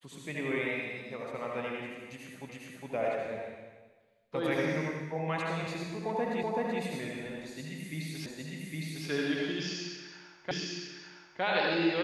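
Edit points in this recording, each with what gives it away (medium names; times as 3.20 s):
2.49 s: repeat of the last 0.41 s
6.43 s: repeat of the last 0.38 s
8.26 s: repeat of the last 0.81 s
10.51 s: repeat of the last 0.91 s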